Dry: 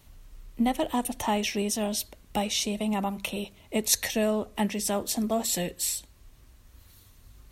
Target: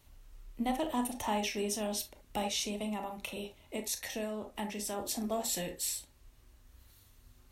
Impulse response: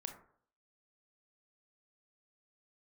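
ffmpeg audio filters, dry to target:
-filter_complex "[0:a]equalizer=frequency=190:width=2.1:gain=-4.5,asettb=1/sr,asplit=3[link_01][link_02][link_03];[link_01]atrim=end=2.844[link_04];[link_02]atrim=start=2.84:end=4.99,asetpts=PTS-STARTPTS,afade=type=in:duration=0.004:curve=qsin,afade=type=out:start_time=2.146:duration=0.004:curve=qsin,acompressor=threshold=-30dB:ratio=2.5[link_05];[link_03]atrim=start=4.986[link_06];[link_04][link_05]acrossfade=duration=0.004:curve1=hsin:curve2=qsin[link_07];[link_07][link_06]acrossfade=duration=0.004:curve1=qsin:curve2=hsin[link_08];[1:a]atrim=start_sample=2205,atrim=end_sample=3528[link_09];[link_08][link_09]afir=irnorm=-1:irlink=0,volume=-2dB"

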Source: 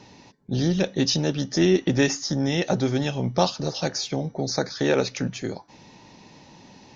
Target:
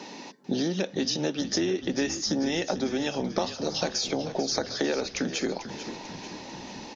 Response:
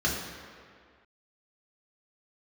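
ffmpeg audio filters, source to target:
-filter_complex "[0:a]highpass=frequency=210:width=0.5412,highpass=frequency=210:width=1.3066,acompressor=threshold=-33dB:ratio=12,asplit=2[link_01][link_02];[link_02]asplit=7[link_03][link_04][link_05][link_06][link_07][link_08][link_09];[link_03]adelay=443,afreqshift=-40,volume=-12dB[link_10];[link_04]adelay=886,afreqshift=-80,volume=-16.4dB[link_11];[link_05]adelay=1329,afreqshift=-120,volume=-20.9dB[link_12];[link_06]adelay=1772,afreqshift=-160,volume=-25.3dB[link_13];[link_07]adelay=2215,afreqshift=-200,volume=-29.7dB[link_14];[link_08]adelay=2658,afreqshift=-240,volume=-34.2dB[link_15];[link_09]adelay=3101,afreqshift=-280,volume=-38.6dB[link_16];[link_10][link_11][link_12][link_13][link_14][link_15][link_16]amix=inputs=7:normalize=0[link_17];[link_01][link_17]amix=inputs=2:normalize=0,volume=8.5dB"

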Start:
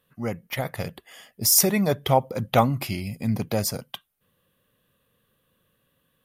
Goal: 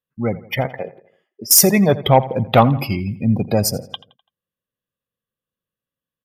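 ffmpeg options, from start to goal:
ffmpeg -i in.wav -filter_complex "[0:a]asettb=1/sr,asplit=3[link_01][link_02][link_03];[link_01]atrim=end=0.664[link_04];[link_02]atrim=start=0.66:end=1.51,asetpts=PTS-STARTPTS,afade=type=in:duration=0.004:curve=qsin,afade=type=out:start_time=0.846:duration=0.004:curve=qsin,acrossover=split=260 3100:gain=0.1 1 0.126[link_05][link_06][link_07];[link_05][link_06][link_07]amix=inputs=3:normalize=0[link_08];[link_03]atrim=start=1.506[link_09];[link_04][link_08]acrossfade=duration=0.004:curve1=hsin:curve2=qsin[link_10];[link_10][link_09]acrossfade=duration=0.004:curve1=qsin:curve2=hsin,afftdn=noise_reduction=29:noise_floor=-33,asplit=2[link_11][link_12];[link_12]aeval=exprs='0.596*sin(PI/2*1.58*val(0)/0.596)':channel_layout=same,volume=-4dB[link_13];[link_11][link_13]amix=inputs=2:normalize=0,asplit=2[link_14][link_15];[link_15]adelay=84,lowpass=frequency=4700:poles=1,volume=-17dB,asplit=2[link_16][link_17];[link_17]adelay=84,lowpass=frequency=4700:poles=1,volume=0.49,asplit=2[link_18][link_19];[link_19]adelay=84,lowpass=frequency=4700:poles=1,volume=0.49,asplit=2[link_20][link_21];[link_21]adelay=84,lowpass=frequency=4700:poles=1,volume=0.49[link_22];[link_14][link_16][link_18][link_20][link_22]amix=inputs=5:normalize=0" out.wav

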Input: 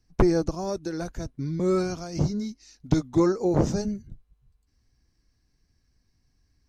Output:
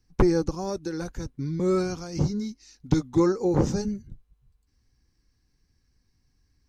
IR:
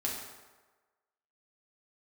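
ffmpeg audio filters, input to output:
-af "asuperstop=centerf=650:order=4:qfactor=5.7"

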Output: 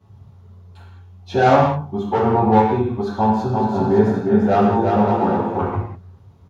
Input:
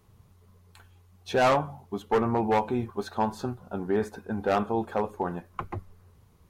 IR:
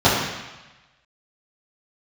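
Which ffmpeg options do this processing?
-filter_complex "[0:a]asplit=3[link_01][link_02][link_03];[link_01]afade=type=out:start_time=3.51:duration=0.02[link_04];[link_02]aecho=1:1:350|560|686|761.6|807:0.631|0.398|0.251|0.158|0.1,afade=type=in:start_time=3.51:duration=0.02,afade=type=out:start_time=5.67:duration=0.02[link_05];[link_03]afade=type=in:start_time=5.67:duration=0.02[link_06];[link_04][link_05][link_06]amix=inputs=3:normalize=0[link_07];[1:a]atrim=start_sample=2205,afade=type=out:start_time=0.27:duration=0.01,atrim=end_sample=12348[link_08];[link_07][link_08]afir=irnorm=-1:irlink=0,volume=-17.5dB"

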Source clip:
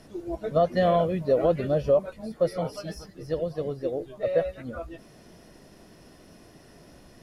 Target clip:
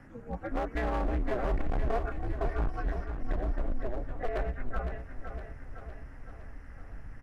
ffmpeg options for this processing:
ffmpeg -i in.wav -filter_complex "[0:a]acrossover=split=3900[link_01][link_02];[link_02]acompressor=threshold=-60dB:ratio=4:attack=1:release=60[link_03];[link_01][link_03]amix=inputs=2:normalize=0,firequalizer=gain_entry='entry(160,0);entry(260,-16);entry(400,-11);entry(1600,3);entry(3600,-23);entry(7000,-15);entry(11000,-20)':delay=0.05:min_phase=1,aeval=exprs='val(0)*sin(2*PI*120*n/s)':channel_layout=same,asettb=1/sr,asplit=3[link_04][link_05][link_06];[link_04]atrim=end=1.514[link_07];[link_05]atrim=start=1.51:end=2.86,asetpts=PTS-STARTPTS,afade=type=in:duration=0.004:curve=qsin,afade=type=out:start_time=1.346:duration=0.004:curve=qsin,aecho=1:1:2.7:0.95,atrim=end_sample=59535[link_08];[link_06]atrim=start=2.856[link_09];[link_07][link_08]acrossfade=duration=0.004:curve1=hsin:curve2=qsin[link_10];[link_10][link_09]acrossfade=duration=0.004:curve1=qsin:curve2=hsin,alimiter=level_in=0.5dB:limit=-24dB:level=0:latency=1:release=85,volume=-0.5dB,asubboost=boost=6.5:cutoff=74,volume=31.5dB,asoftclip=hard,volume=-31.5dB,aecho=1:1:510|1020|1530|2040|2550|3060|3570:0.376|0.21|0.118|0.066|0.037|0.0207|0.0116,volume=5.5dB" out.wav

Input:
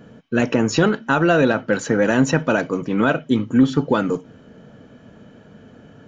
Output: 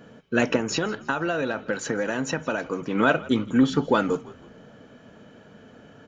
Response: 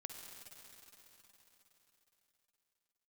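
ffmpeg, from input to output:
-filter_complex "[0:a]lowshelf=frequency=290:gain=-8,asettb=1/sr,asplit=3[link_01][link_02][link_03];[link_01]atrim=end=0.564[link_04];[link_02]atrim=start=0.56:end=2.95,asetpts=PTS-STARTPTS,afade=type=in:duration=0.004:curve=qsin,afade=type=out:start_time=2.386:duration=0.004:curve=qsin,acompressor=threshold=-23dB:ratio=6[link_05];[link_03]atrim=start=2.946[link_06];[link_04][link_05]acrossfade=duration=0.004:curve1=hsin:curve2=qsin[link_07];[link_07][link_06]acrossfade=duration=0.004:curve1=qsin:curve2=hsin,asplit=4[link_08][link_09][link_10][link_11];[link_09]adelay=163,afreqshift=-55,volume=-20.5dB[link_12];[link_10]adelay=326,afreqshift=-110,volume=-28.5dB[link_13];[link_11]adelay=489,afreqshift=-165,volume=-36.4dB[link_14];[link_08][link_12][link_13][link_14]amix=inputs=4:normalize=0"

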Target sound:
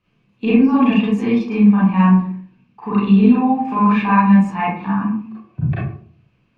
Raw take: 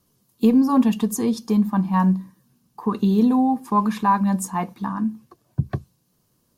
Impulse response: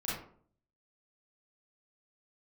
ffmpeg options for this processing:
-filter_complex "[0:a]lowpass=frequency=2500:width_type=q:width=7.9[link_01];[1:a]atrim=start_sample=2205[link_02];[link_01][link_02]afir=irnorm=-1:irlink=0,volume=-1dB"

